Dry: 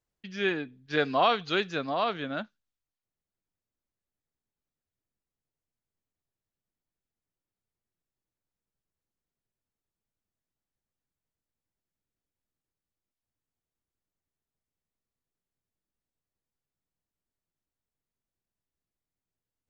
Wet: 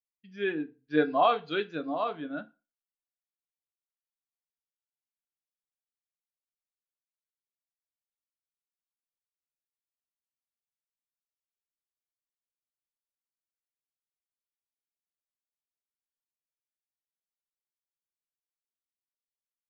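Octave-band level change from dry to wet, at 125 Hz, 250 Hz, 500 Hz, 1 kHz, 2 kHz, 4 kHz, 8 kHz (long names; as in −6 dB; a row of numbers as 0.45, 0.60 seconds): −5.0 dB, +1.5 dB, 0.0 dB, −0.5 dB, −4.5 dB, −7.0 dB, can't be measured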